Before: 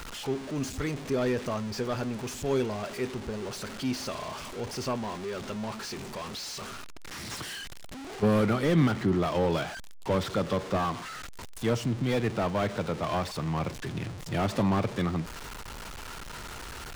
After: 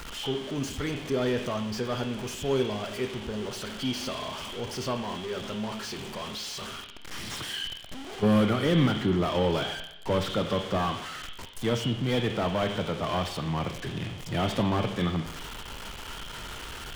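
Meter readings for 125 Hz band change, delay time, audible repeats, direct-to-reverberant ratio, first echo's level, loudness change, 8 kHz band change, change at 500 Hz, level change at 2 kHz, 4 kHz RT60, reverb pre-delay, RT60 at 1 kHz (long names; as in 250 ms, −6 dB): +0.5 dB, no echo audible, no echo audible, 4.5 dB, no echo audible, +1.0 dB, 0.0 dB, +0.5 dB, +1.5 dB, 0.85 s, 20 ms, 0.85 s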